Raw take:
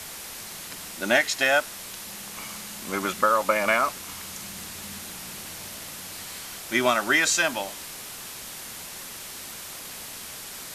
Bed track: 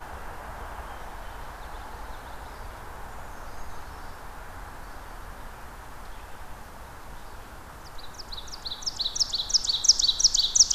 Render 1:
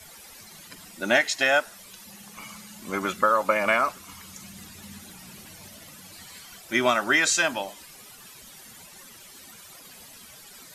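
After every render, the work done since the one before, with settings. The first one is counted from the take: noise reduction 13 dB, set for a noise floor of -39 dBFS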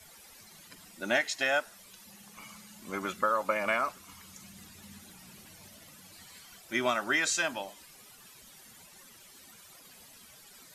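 trim -7 dB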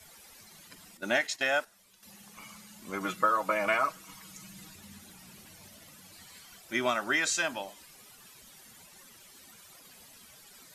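0.97–2.03 s: gate -42 dBFS, range -9 dB; 3.00–4.76 s: comb 6.3 ms, depth 71%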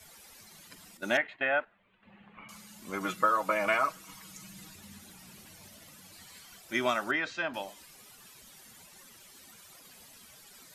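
1.17–2.49 s: inverse Chebyshev low-pass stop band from 5.2 kHz; 7.11–7.54 s: distance through air 320 m

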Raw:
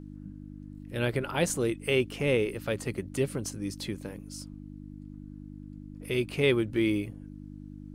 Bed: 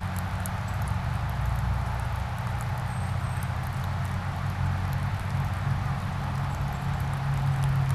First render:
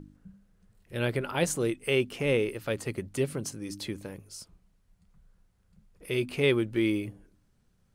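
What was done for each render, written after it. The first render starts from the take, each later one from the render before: de-hum 50 Hz, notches 6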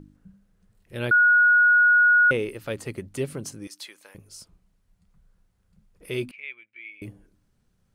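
1.11–2.31 s: bleep 1.45 kHz -13.5 dBFS; 3.67–4.15 s: high-pass 1 kHz; 6.31–7.02 s: band-pass filter 2.3 kHz, Q 11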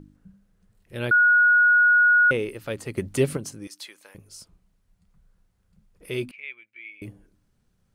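2.97–3.37 s: gain +7 dB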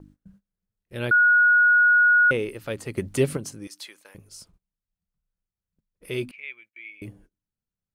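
gate -53 dBFS, range -23 dB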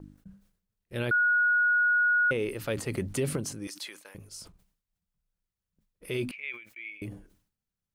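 peak limiter -20.5 dBFS, peak gain reduction 10.5 dB; decay stretcher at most 110 dB/s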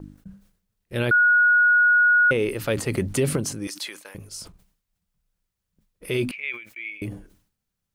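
trim +7 dB

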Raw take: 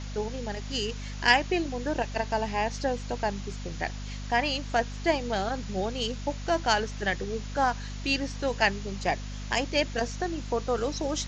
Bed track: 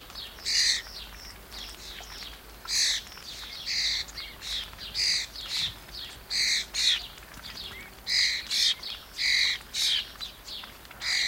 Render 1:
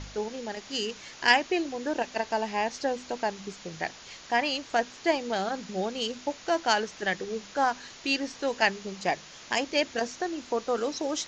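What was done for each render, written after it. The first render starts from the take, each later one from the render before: de-hum 50 Hz, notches 5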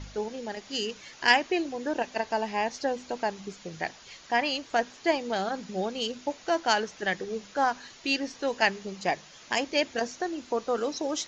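noise reduction 6 dB, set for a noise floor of -48 dBFS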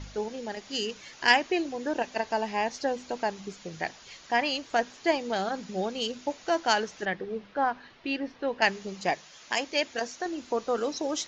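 7.05–8.62 s: distance through air 310 m; 9.14–10.26 s: bass shelf 400 Hz -7 dB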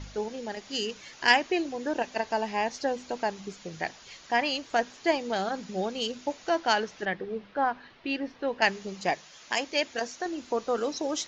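6.49–8.10 s: low-pass 5.6 kHz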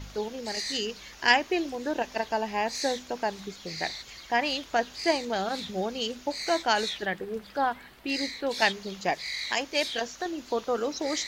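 add bed track -10 dB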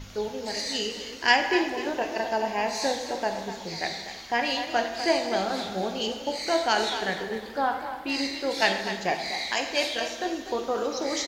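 on a send: frequency-shifting echo 247 ms, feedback 37%, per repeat +35 Hz, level -10.5 dB; on the sum: plate-style reverb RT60 1.2 s, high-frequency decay 0.75×, DRR 4.5 dB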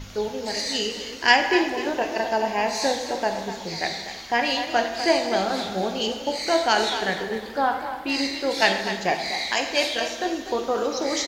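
trim +3.5 dB

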